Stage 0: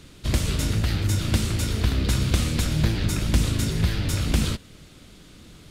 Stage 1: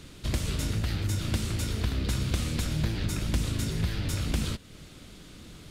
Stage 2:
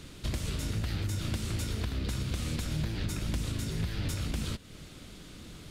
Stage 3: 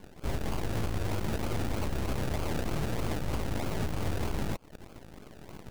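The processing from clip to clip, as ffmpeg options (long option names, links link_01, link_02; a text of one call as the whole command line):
ffmpeg -i in.wav -af "acompressor=threshold=-36dB:ratio=1.5" out.wav
ffmpeg -i in.wav -af "alimiter=limit=-23.5dB:level=0:latency=1:release=280" out.wav
ffmpeg -i in.wav -af "acrusher=samples=33:mix=1:aa=0.000001:lfo=1:lforange=19.8:lforate=3.2,aeval=exprs='0.0708*(cos(1*acos(clip(val(0)/0.0708,-1,1)))-cos(1*PI/2))+0.00447*(cos(5*acos(clip(val(0)/0.0708,-1,1)))-cos(5*PI/2))+0.00794*(cos(7*acos(clip(val(0)/0.0708,-1,1)))-cos(7*PI/2))+0.0282*(cos(8*acos(clip(val(0)/0.0708,-1,1)))-cos(8*PI/2))':channel_layout=same,volume=-2.5dB" out.wav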